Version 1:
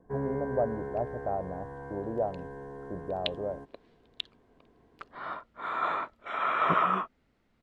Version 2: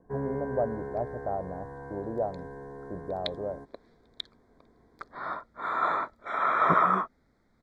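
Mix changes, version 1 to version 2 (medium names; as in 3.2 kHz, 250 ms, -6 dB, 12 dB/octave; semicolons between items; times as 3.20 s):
second sound +3.0 dB; master: add Butterworth band-stop 2.8 kHz, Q 2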